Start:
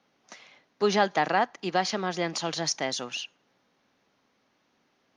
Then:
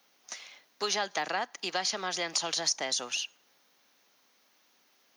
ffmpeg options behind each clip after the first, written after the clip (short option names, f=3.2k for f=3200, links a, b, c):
-filter_complex "[0:a]acrossover=split=480|1200[a][b][c];[a]acompressor=threshold=-37dB:ratio=4[d];[b]acompressor=threshold=-34dB:ratio=4[e];[c]acompressor=threshold=-36dB:ratio=4[f];[d][e][f]amix=inputs=3:normalize=0,aemphasis=mode=production:type=riaa"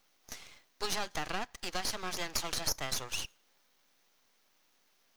-af "aeval=exprs='max(val(0),0)':c=same"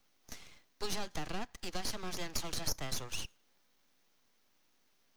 -filter_complex "[0:a]acrossover=split=340|900|2600[a][b][c][d];[a]acontrast=62[e];[c]alimiter=level_in=13.5dB:limit=-24dB:level=0:latency=1,volume=-13.5dB[f];[e][b][f][d]amix=inputs=4:normalize=0,volume=-4dB"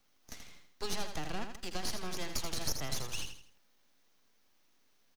-af "aecho=1:1:81|162|243|324:0.422|0.152|0.0547|0.0197"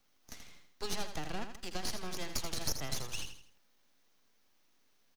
-af "aeval=exprs='0.1*(cos(1*acos(clip(val(0)/0.1,-1,1)))-cos(1*PI/2))+0.0112*(cos(4*acos(clip(val(0)/0.1,-1,1)))-cos(4*PI/2))+0.00447*(cos(7*acos(clip(val(0)/0.1,-1,1)))-cos(7*PI/2))':c=same,volume=2.5dB"